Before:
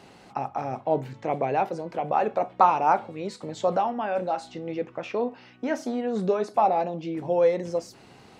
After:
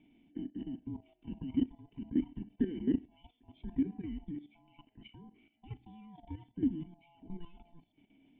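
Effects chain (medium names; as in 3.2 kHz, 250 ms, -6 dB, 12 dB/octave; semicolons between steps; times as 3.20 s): split-band scrambler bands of 500 Hz; cascade formant filter i; level held to a coarse grid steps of 13 dB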